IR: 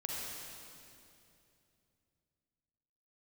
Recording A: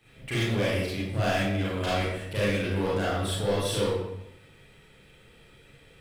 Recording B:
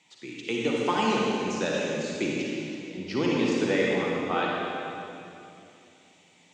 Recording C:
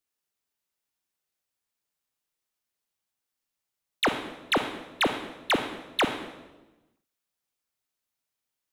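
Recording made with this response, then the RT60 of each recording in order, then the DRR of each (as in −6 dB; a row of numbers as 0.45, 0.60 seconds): B; 0.85, 2.7, 1.1 seconds; −8.5, −3.5, 6.5 decibels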